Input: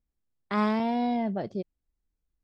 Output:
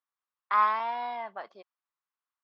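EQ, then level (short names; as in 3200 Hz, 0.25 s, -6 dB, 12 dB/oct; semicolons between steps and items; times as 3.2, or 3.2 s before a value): resonant high-pass 1100 Hz, resonance Q 3.8; LPF 3600 Hz 12 dB/oct; -1.5 dB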